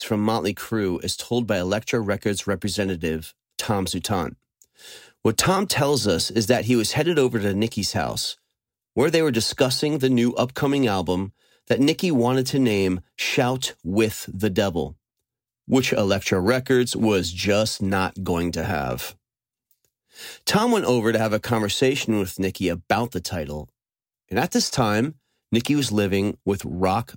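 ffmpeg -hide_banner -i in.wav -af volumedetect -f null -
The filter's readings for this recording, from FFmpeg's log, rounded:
mean_volume: -22.9 dB
max_volume: -3.9 dB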